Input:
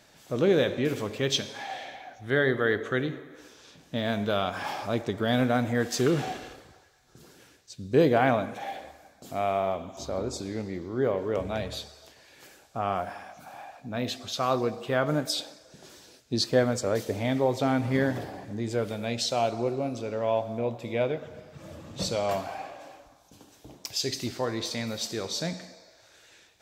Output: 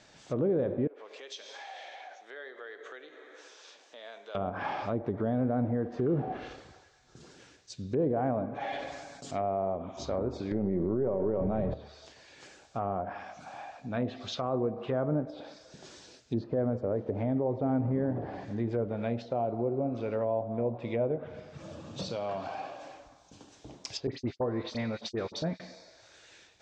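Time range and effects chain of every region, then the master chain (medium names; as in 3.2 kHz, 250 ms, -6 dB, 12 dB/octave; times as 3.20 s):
0.87–4.35 s: compression 4:1, threshold -42 dBFS + high-pass 430 Hz 24 dB/octave
8.50–9.31 s: treble shelf 6.6 kHz +9.5 dB + comb 7.1 ms, depth 61% + decay stretcher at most 33 dB/s
10.51–11.74 s: partial rectifier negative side -3 dB + comb 5.3 ms, depth 37% + level flattener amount 70%
21.63–22.83 s: high-pass 92 Hz + peaking EQ 2 kHz -8 dB 0.29 oct + compression 2.5:1, threshold -33 dBFS
24.07–25.60 s: gate -35 dBFS, range -47 dB + phase dispersion highs, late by 51 ms, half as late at 2.2 kHz
whole clip: steep low-pass 7.6 kHz 36 dB/octave; low-pass that closes with the level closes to 700 Hz, closed at -25 dBFS; peak limiter -20.5 dBFS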